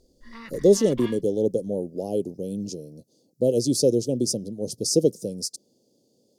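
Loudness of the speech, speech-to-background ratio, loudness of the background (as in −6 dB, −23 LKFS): −24.0 LKFS, 18.5 dB, −42.5 LKFS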